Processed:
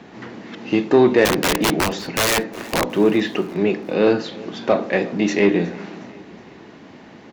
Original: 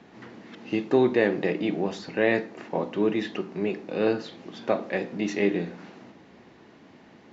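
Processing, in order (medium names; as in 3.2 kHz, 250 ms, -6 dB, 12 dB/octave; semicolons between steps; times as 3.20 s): 1.25–2.87 s: integer overflow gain 20.5 dB; Chebyshev shaper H 5 -22 dB, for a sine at -9 dBFS; feedback delay 365 ms, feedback 50%, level -22 dB; trim +6.5 dB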